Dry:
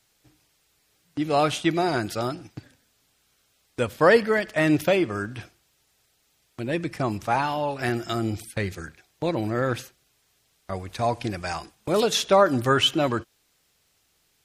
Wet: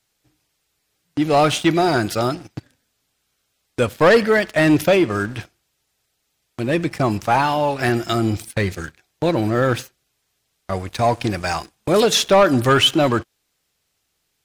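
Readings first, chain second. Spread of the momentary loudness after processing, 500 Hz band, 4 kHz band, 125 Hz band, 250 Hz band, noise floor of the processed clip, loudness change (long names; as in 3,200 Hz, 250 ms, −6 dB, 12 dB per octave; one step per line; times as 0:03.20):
14 LU, +5.5 dB, +6.0 dB, +7.0 dB, +6.5 dB, −72 dBFS, +6.0 dB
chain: leveller curve on the samples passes 2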